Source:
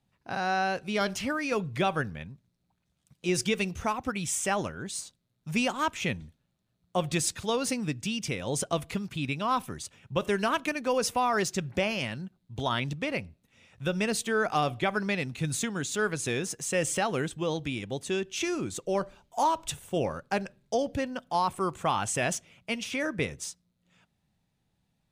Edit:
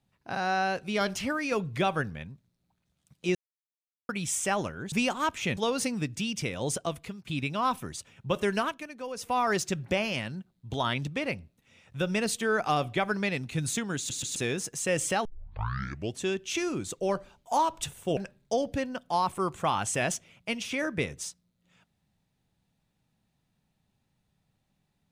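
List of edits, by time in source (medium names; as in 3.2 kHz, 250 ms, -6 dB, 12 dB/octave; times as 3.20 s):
3.35–4.09 s: mute
4.92–5.51 s: delete
6.16–7.43 s: delete
8.51–9.13 s: fade out, to -13 dB
10.44–11.24 s: dip -10.5 dB, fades 0.19 s
15.83 s: stutter in place 0.13 s, 3 plays
17.11 s: tape start 0.99 s
20.03–20.38 s: delete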